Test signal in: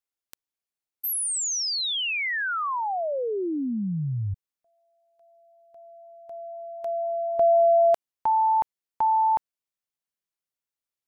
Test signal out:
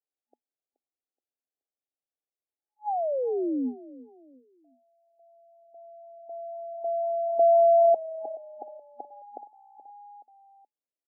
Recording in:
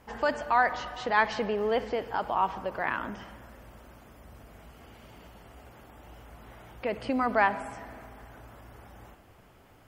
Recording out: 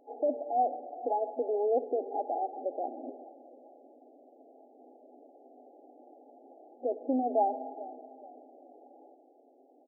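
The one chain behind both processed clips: frequency-shifting echo 0.425 s, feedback 36%, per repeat -31 Hz, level -18 dB; FFT band-pass 240–840 Hz

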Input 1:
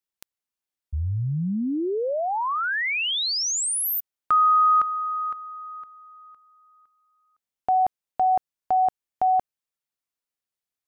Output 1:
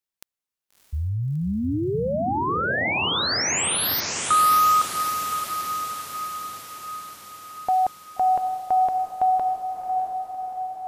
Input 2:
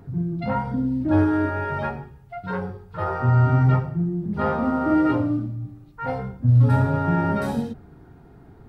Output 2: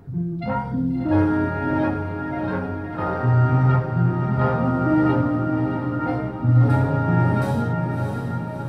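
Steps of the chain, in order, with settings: diffused feedback echo 0.65 s, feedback 62%, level -5 dB

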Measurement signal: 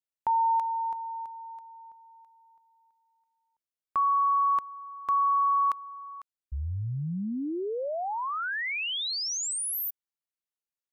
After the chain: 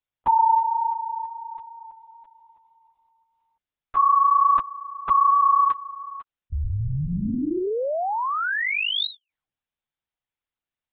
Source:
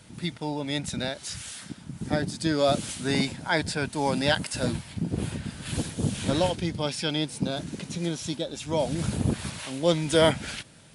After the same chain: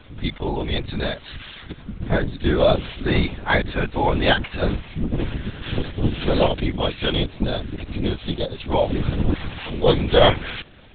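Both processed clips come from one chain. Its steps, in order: LPC vocoder at 8 kHz whisper; gain +6.5 dB

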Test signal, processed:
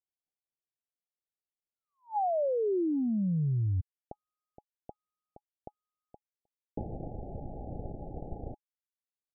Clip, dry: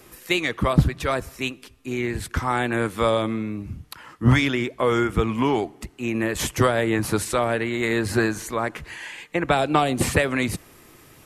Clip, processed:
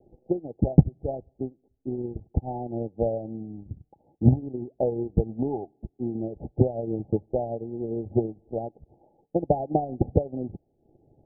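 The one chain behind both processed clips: transient shaper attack +10 dB, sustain -10 dB; Chebyshev low-pass 840 Hz, order 10; gain -7.5 dB

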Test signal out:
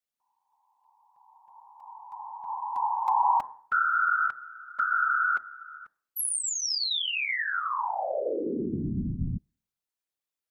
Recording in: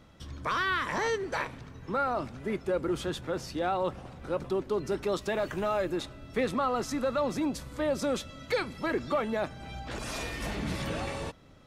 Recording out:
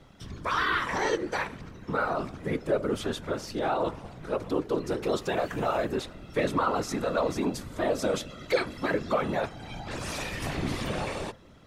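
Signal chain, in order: de-hum 133 Hz, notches 14; whisperiser; gain +2 dB

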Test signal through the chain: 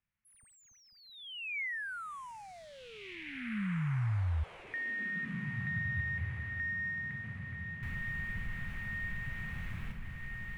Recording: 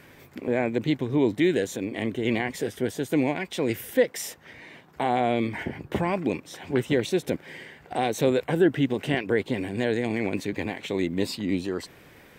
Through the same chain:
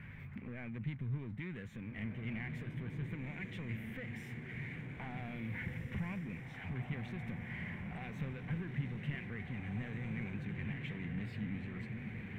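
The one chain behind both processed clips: compressor 2:1, threshold -39 dBFS; on a send: diffused feedback echo 1.851 s, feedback 42%, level -4.5 dB; on the sum: power-law curve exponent 0.7; EQ curve 120 Hz 0 dB, 210 Hz -4 dB, 300 Hz -21 dB, 620 Hz -21 dB, 2200 Hz -5 dB, 4900 Hz -28 dB; mismatched tape noise reduction decoder only; gain -1 dB

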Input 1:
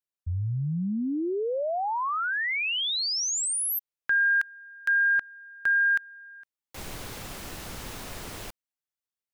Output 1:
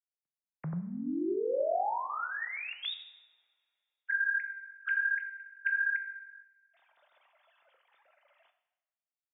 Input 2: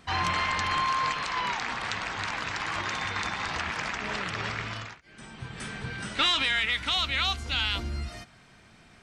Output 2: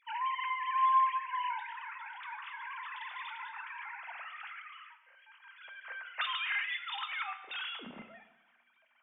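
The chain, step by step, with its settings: sine-wave speech; two-slope reverb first 0.87 s, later 2.4 s, from -23 dB, DRR 6.5 dB; gain -8.5 dB

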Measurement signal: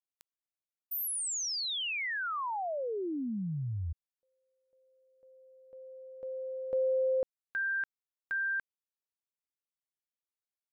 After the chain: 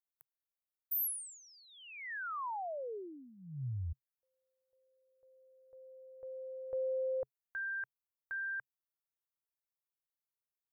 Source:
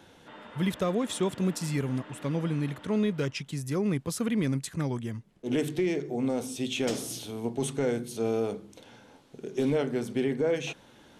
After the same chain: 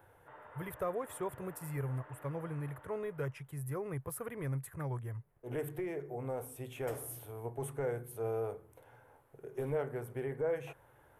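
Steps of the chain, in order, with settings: EQ curve 130 Hz 0 dB, 210 Hz -21 dB, 430 Hz -4 dB, 1000 Hz -1 dB, 1800 Hz -4 dB, 4000 Hz -24 dB, 6300 Hz -21 dB, 12000 Hz +4 dB; gain -3 dB

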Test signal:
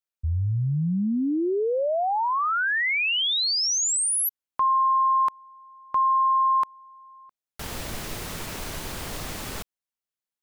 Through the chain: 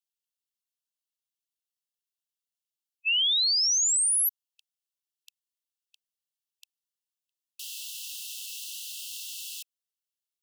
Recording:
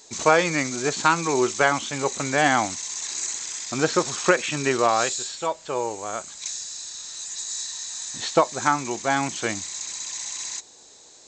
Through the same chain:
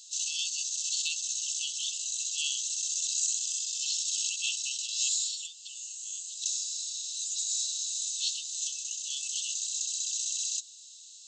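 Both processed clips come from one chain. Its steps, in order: brick-wall FIR high-pass 2600 Hz

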